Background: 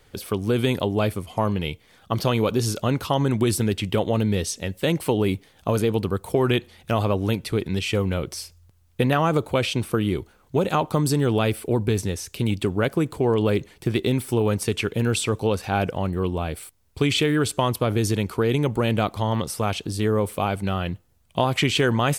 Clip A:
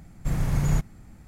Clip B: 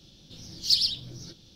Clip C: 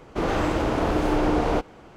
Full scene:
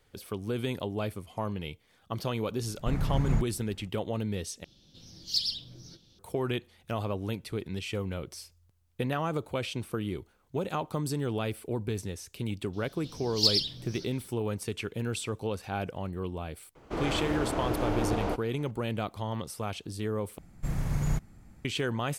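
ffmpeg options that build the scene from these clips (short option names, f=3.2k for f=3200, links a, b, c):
-filter_complex "[1:a]asplit=2[a][b];[2:a]asplit=2[c][d];[0:a]volume=-10.5dB[e];[a]lowpass=f=2.2k:p=1[f];[e]asplit=3[g][h][i];[g]atrim=end=4.644[j];[c]atrim=end=1.55,asetpts=PTS-STARTPTS,volume=-6.5dB[k];[h]atrim=start=6.186:end=20.384[l];[b]atrim=end=1.27,asetpts=PTS-STARTPTS,volume=-5.5dB[m];[i]atrim=start=21.646[n];[f]atrim=end=1.27,asetpts=PTS-STARTPTS,volume=-4dB,afade=t=in:d=0.004:c=hsin,afade=t=out:st=1.266:d=0.004:c=hsin,adelay=2610[o];[d]atrim=end=1.55,asetpts=PTS-STARTPTS,volume=-2dB,afade=t=in:d=0.004:c=hsin,afade=t=out:st=1.546:d=0.004:c=hsin,adelay=12730[p];[3:a]atrim=end=1.96,asetpts=PTS-STARTPTS,volume=-8dB,afade=t=in:d=0.004:c=hsin,afade=t=out:st=1.956:d=0.004:c=hsin,adelay=16750[q];[j][k]acrossfade=d=0.004:c1=hsin:c2=hsin[r];[r][l]acrossfade=d=0.004:c1=hsin:c2=hsin[s];[s][m]acrossfade=d=0.004:c1=hsin:c2=hsin[t];[t][n]acrossfade=d=0.004:c1=hsin:c2=hsin[u];[u][o][p][q]amix=inputs=4:normalize=0"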